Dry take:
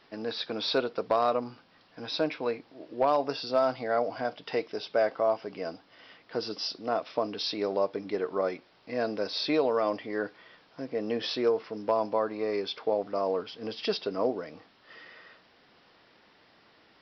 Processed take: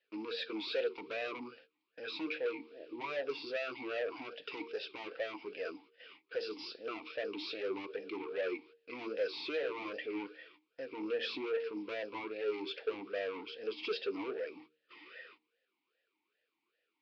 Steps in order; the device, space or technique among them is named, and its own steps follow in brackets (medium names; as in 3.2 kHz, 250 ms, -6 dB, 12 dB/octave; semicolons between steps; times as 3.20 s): gate -53 dBFS, range -21 dB; de-hum 77 Hz, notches 6; talk box (valve stage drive 34 dB, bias 0.5; talking filter e-u 2.5 Hz); low-pass 5.3 kHz 24 dB/octave; peaking EQ 4.9 kHz +13 dB 2.9 oct; trim +7 dB